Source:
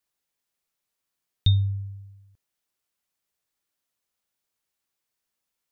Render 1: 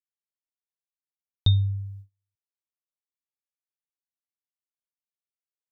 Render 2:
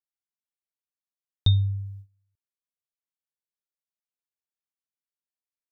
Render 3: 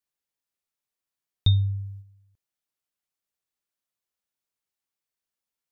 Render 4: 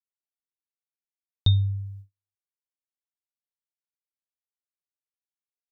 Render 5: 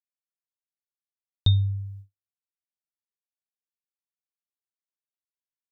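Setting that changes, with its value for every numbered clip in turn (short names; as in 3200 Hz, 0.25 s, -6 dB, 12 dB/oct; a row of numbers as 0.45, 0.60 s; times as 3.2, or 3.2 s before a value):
gate, range: -33, -20, -7, -45, -58 dB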